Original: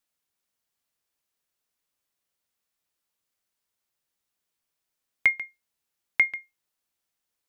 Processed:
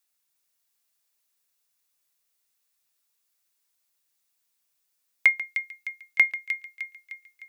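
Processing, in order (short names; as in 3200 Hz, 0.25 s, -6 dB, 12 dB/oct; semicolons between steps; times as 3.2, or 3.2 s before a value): tilt +2 dB/oct; notch 3100 Hz, Q 22; thin delay 0.305 s, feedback 51%, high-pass 2400 Hz, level -6 dB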